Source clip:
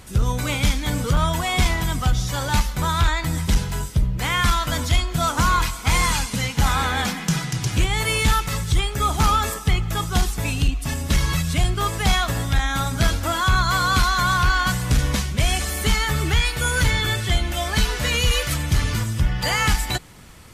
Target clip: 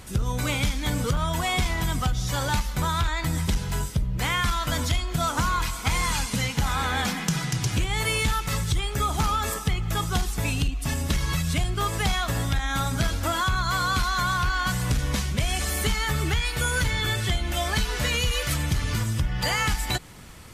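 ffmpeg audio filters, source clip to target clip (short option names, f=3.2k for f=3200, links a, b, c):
-af "acompressor=threshold=-21dB:ratio=6"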